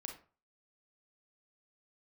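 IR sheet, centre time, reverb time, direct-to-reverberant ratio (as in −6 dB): 20 ms, 0.40 s, 2.5 dB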